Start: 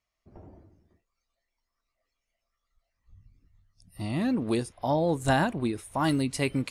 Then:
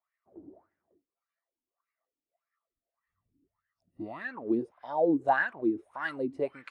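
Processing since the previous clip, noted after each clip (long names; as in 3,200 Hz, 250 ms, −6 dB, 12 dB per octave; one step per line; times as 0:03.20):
LFO wah 1.7 Hz 280–1,800 Hz, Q 6.9
level +8.5 dB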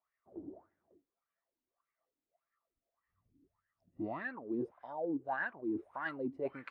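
low-pass filter 1,300 Hz 6 dB per octave
reversed playback
downward compressor 8 to 1, threshold −37 dBFS, peak gain reduction 16.5 dB
reversed playback
level +3 dB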